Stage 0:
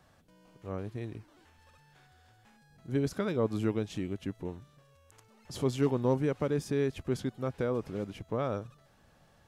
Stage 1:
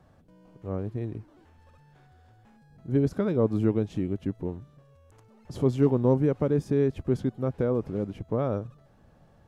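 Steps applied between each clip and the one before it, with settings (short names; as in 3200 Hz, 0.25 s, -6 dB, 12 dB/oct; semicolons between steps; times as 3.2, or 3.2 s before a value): tilt shelf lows +7 dB, about 1200 Hz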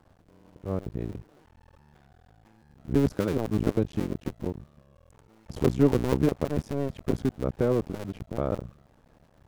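cycle switcher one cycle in 2, muted; gain +2 dB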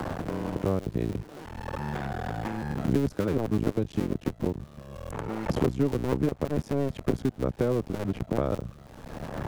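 three-band squash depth 100%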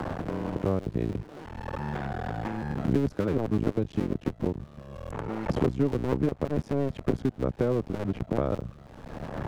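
LPF 3800 Hz 6 dB/oct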